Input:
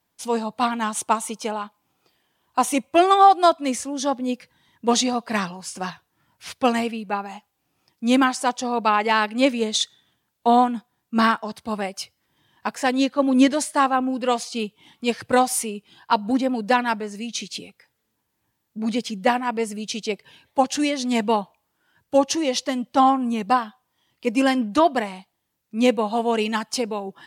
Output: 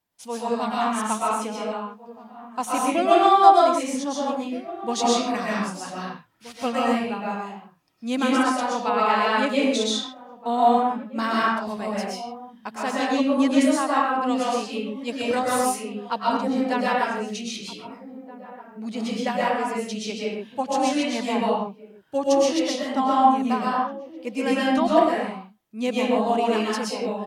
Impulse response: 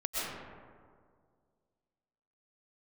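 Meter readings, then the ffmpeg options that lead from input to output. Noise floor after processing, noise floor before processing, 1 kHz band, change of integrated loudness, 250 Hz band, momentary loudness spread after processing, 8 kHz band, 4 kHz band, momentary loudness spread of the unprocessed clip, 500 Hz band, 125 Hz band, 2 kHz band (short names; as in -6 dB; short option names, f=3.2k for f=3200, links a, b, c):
-49 dBFS, -75 dBFS, -0.5 dB, -1.0 dB, -1.5 dB, 16 LU, -3.5 dB, -2.0 dB, 13 LU, 0.0 dB, n/a, -1.5 dB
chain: -filter_complex "[0:a]asplit=2[a][b];[b]adelay=1574,volume=-16dB,highshelf=f=4k:g=-35.4[c];[a][c]amix=inputs=2:normalize=0[d];[1:a]atrim=start_sample=2205,afade=t=out:st=0.35:d=0.01,atrim=end_sample=15876[e];[d][e]afir=irnorm=-1:irlink=0,volume=-6.5dB"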